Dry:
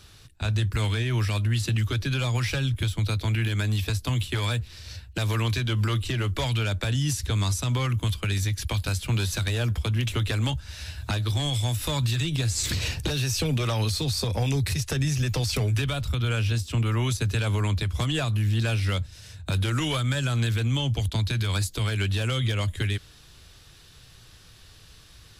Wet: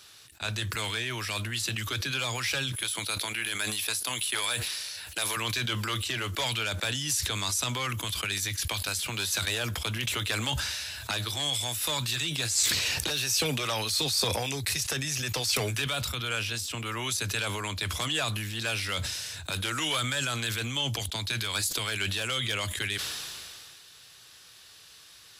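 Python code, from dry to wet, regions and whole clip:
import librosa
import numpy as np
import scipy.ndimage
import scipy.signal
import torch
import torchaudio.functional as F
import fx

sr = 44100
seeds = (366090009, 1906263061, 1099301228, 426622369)

y = fx.chain(x, sr, fx.highpass(hz=390.0, slope=6),
    fx.peak_eq(hz=10000.0, db=12.5, octaves=0.2), at=(2.72, 5.37))
y = fx.highpass(y, sr, hz=830.0, slope=6)
y = fx.high_shelf(y, sr, hz=6100.0, db=3.5)
y = fx.sustainer(y, sr, db_per_s=24.0)
y = y * 10.0 ** (1.0 / 20.0)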